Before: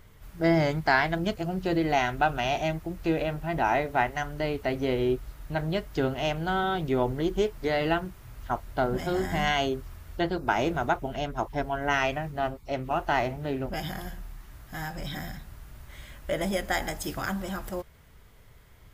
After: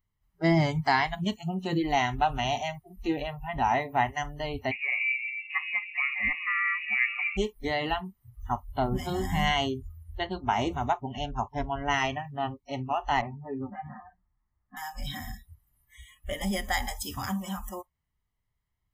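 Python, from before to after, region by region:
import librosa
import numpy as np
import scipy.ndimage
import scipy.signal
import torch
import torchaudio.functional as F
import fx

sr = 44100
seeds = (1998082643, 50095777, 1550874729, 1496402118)

y = fx.chain(x, sr, fx.low_shelf(hz=87.0, db=-9.0),
    fx.echo_stepped(ms=132, hz=260.0, octaves=0.7, feedback_pct=70, wet_db=-5.5),
    fx.freq_invert(carrier_hz=2700), at=(4.71, 7.37))
y = fx.chain(y, sr, fx.lowpass(hz=1900.0, slope=24),
    fx.ensemble(), at=(13.21, 14.77))
y = fx.dynamic_eq(y, sr, hz=1400.0, q=1.3, threshold_db=-40.0, ratio=4.0, max_db=-4)
y = y + 0.53 * np.pad(y, (int(1.0 * sr / 1000.0), 0))[:len(y)]
y = fx.noise_reduce_blind(y, sr, reduce_db=30)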